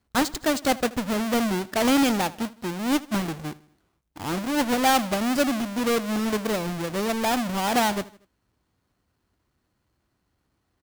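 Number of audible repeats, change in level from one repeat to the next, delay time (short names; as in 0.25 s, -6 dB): 3, -6.5 dB, 79 ms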